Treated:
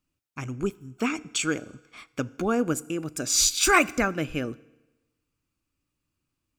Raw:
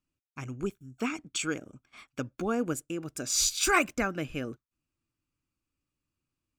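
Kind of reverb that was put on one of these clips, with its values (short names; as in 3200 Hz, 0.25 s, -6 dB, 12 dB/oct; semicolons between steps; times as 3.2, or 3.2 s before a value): FDN reverb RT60 1.1 s, low-frequency decay 0.95×, high-frequency decay 0.9×, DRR 19 dB; gain +5 dB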